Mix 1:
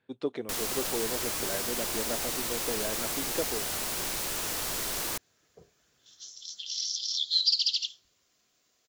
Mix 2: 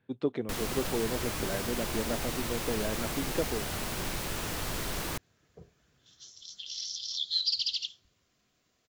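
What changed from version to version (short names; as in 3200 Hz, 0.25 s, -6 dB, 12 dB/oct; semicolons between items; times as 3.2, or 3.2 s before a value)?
master: add tone controls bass +9 dB, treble -7 dB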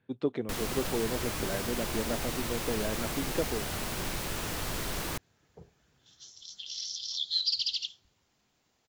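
second sound: remove Butterworth band-stop 860 Hz, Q 4.5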